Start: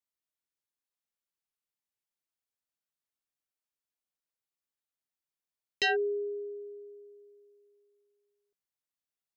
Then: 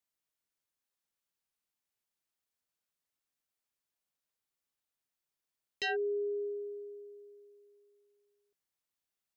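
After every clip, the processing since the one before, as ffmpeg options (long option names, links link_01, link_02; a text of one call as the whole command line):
ffmpeg -i in.wav -af "alimiter=level_in=8dB:limit=-24dB:level=0:latency=1:release=459,volume=-8dB,volume=2.5dB" out.wav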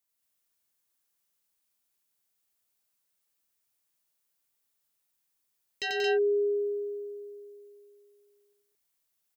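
ffmpeg -i in.wav -filter_complex "[0:a]crystalizer=i=1:c=0,asplit=2[link_01][link_02];[link_02]aecho=0:1:90.38|183.7|224.5:0.794|0.708|0.891[link_03];[link_01][link_03]amix=inputs=2:normalize=0" out.wav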